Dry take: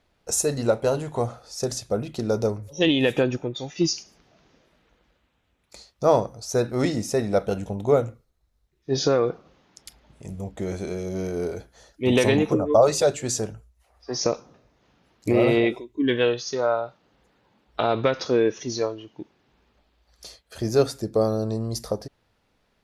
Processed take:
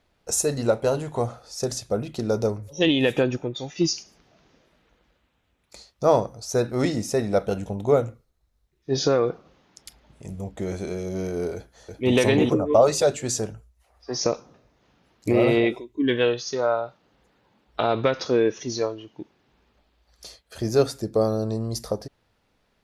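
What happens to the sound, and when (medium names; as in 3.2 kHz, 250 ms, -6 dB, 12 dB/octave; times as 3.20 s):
11.54–12.15 s: echo throw 340 ms, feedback 20%, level -4 dB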